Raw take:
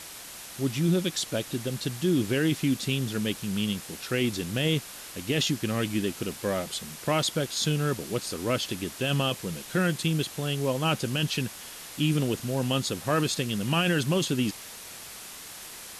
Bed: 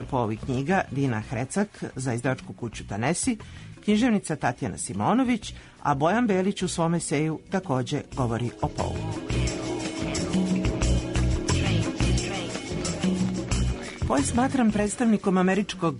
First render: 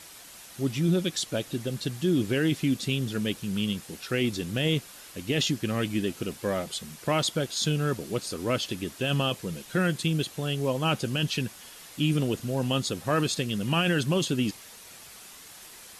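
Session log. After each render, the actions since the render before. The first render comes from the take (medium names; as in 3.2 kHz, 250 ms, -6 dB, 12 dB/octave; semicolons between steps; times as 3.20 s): noise reduction 6 dB, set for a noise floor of -43 dBFS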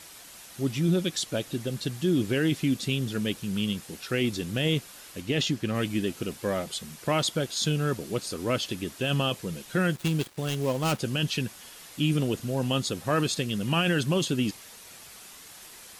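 5.20–5.74 s: treble shelf 9.4 kHz -> 6 kHz -7.5 dB; 9.91–10.99 s: dead-time distortion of 0.11 ms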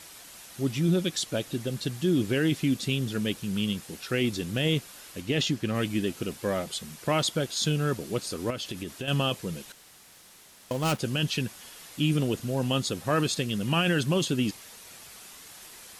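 8.50–9.08 s: compression, threshold -30 dBFS; 9.72–10.71 s: room tone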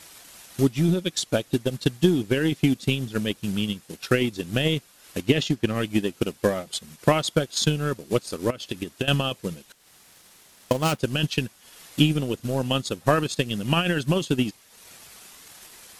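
transient shaper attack +11 dB, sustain -8 dB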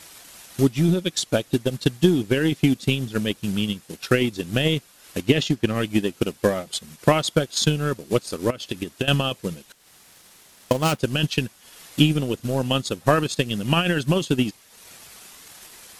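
trim +2 dB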